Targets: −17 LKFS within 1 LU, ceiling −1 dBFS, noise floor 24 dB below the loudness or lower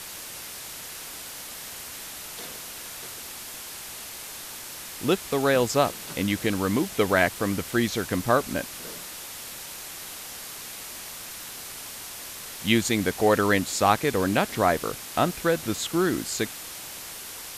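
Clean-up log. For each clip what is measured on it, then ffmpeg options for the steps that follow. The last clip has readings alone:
background noise floor −39 dBFS; target noise floor −52 dBFS; integrated loudness −27.5 LKFS; sample peak −5.0 dBFS; target loudness −17.0 LKFS
→ -af "afftdn=noise_reduction=13:noise_floor=-39"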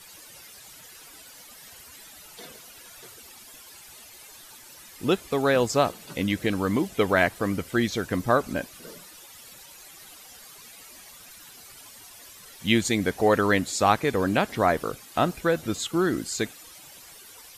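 background noise floor −48 dBFS; target noise floor −49 dBFS
→ -af "afftdn=noise_reduction=6:noise_floor=-48"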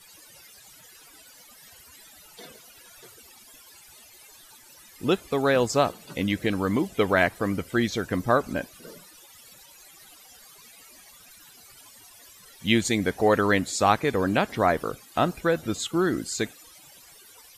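background noise floor −52 dBFS; integrated loudness −25.0 LKFS; sample peak −5.0 dBFS; target loudness −17.0 LKFS
→ -af "volume=8dB,alimiter=limit=-1dB:level=0:latency=1"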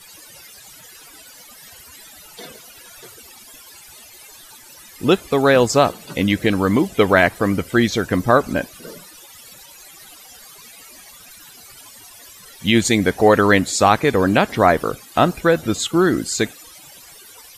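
integrated loudness −17.0 LKFS; sample peak −1.0 dBFS; background noise floor −44 dBFS

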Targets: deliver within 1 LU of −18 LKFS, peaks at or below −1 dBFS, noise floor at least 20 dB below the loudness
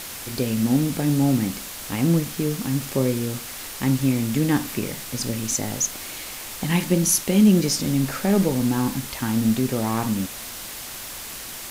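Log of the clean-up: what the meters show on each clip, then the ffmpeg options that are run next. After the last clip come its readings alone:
background noise floor −36 dBFS; target noise floor −43 dBFS; integrated loudness −23.0 LKFS; sample peak −7.0 dBFS; target loudness −18.0 LKFS
→ -af "afftdn=noise_reduction=7:noise_floor=-36"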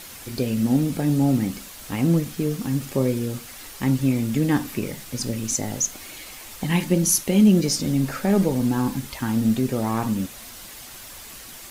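background noise floor −41 dBFS; target noise floor −43 dBFS
→ -af "afftdn=noise_reduction=6:noise_floor=-41"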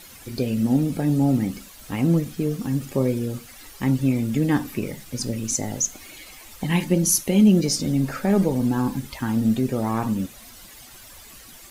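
background noise floor −45 dBFS; integrated loudness −23.0 LKFS; sample peak −7.5 dBFS; target loudness −18.0 LKFS
→ -af "volume=5dB"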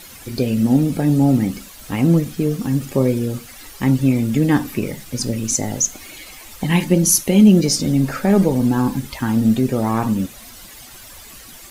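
integrated loudness −18.0 LKFS; sample peak −2.5 dBFS; background noise floor −40 dBFS

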